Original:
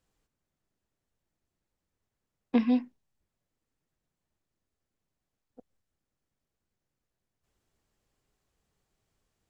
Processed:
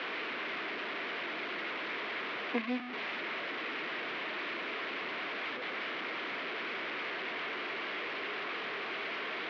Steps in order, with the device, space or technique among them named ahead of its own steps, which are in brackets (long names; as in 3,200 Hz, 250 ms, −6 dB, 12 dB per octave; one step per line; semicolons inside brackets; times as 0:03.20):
digital answering machine (band-pass filter 300–3,400 Hz; linear delta modulator 32 kbit/s, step −31.5 dBFS; loudspeaker in its box 360–3,300 Hz, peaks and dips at 540 Hz −6 dB, 820 Hz −8 dB, 2,200 Hz +5 dB)
level +1.5 dB